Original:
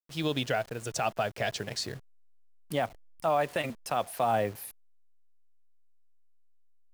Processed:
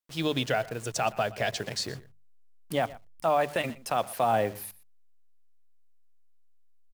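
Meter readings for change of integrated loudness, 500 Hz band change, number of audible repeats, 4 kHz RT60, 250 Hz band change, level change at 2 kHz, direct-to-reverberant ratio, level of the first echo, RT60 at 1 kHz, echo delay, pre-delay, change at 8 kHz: +2.0 dB, +2.0 dB, 1, no reverb, +2.0 dB, +2.0 dB, no reverb, -19.5 dB, no reverb, 120 ms, no reverb, +2.0 dB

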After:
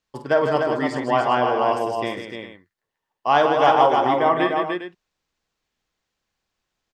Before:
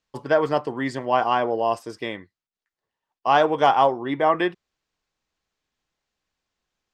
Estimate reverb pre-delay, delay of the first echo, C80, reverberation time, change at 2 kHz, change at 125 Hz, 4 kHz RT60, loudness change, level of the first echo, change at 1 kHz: no reverb, 49 ms, no reverb, no reverb, +2.5 dB, +2.5 dB, no reverb, +2.0 dB, -8.5 dB, +2.5 dB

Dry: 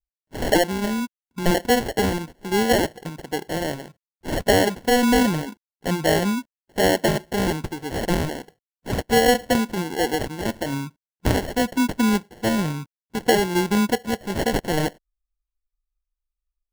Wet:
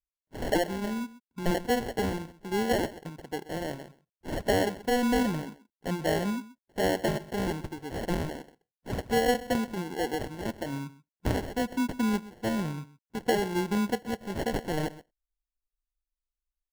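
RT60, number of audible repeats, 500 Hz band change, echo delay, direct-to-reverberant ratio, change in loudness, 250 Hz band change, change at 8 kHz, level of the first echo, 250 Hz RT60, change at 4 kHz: no reverb, 1, -7.5 dB, 129 ms, no reverb, -8.0 dB, -7.5 dB, -11.0 dB, -17.5 dB, no reverb, -10.5 dB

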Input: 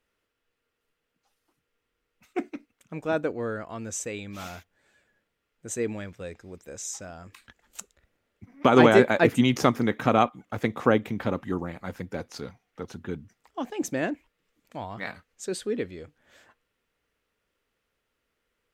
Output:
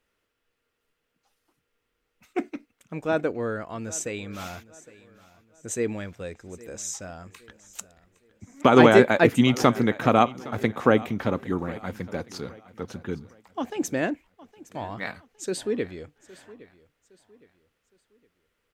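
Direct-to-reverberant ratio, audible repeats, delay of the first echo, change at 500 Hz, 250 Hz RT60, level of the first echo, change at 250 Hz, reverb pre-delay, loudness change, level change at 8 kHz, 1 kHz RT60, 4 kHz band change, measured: no reverb, 2, 813 ms, +2.0 dB, no reverb, -20.0 dB, +2.0 dB, no reverb, +2.0 dB, +2.0 dB, no reverb, +2.0 dB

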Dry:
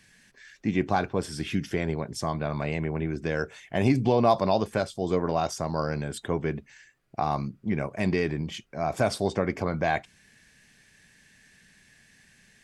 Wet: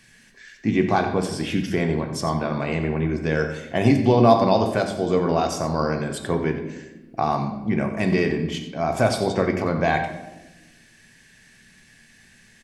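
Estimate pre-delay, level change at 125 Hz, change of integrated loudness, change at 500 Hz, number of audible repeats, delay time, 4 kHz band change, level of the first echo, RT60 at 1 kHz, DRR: 3 ms, +5.0 dB, +5.5 dB, +5.5 dB, 1, 90 ms, +5.5 dB, -13.0 dB, 0.90 s, 4.5 dB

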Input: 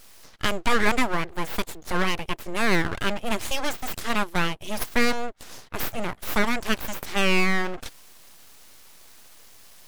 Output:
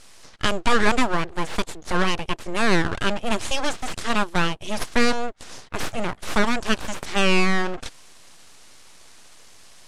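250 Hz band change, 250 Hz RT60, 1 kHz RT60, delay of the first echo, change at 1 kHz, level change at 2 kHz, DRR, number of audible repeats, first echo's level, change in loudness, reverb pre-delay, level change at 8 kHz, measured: +3.0 dB, no reverb, no reverb, no echo, +3.0 dB, +1.0 dB, no reverb, no echo, no echo, +2.0 dB, no reverb, +2.0 dB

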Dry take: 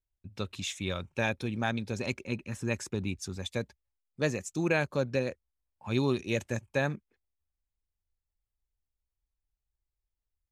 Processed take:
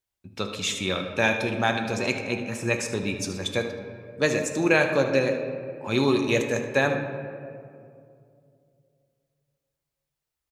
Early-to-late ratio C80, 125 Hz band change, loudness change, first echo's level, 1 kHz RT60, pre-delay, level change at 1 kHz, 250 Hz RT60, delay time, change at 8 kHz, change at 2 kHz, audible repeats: 7.5 dB, +2.0 dB, +7.5 dB, -13.0 dB, 2.2 s, 6 ms, +9.0 dB, 2.8 s, 76 ms, +8.5 dB, +9.5 dB, 1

